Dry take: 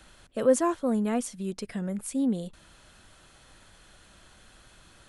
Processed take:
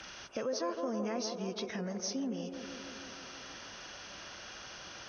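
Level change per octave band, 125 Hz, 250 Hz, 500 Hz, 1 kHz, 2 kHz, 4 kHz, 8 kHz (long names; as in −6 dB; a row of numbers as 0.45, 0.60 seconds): −8.0, −10.0, −8.5, −6.5, 0.0, +6.5, −4.0 decibels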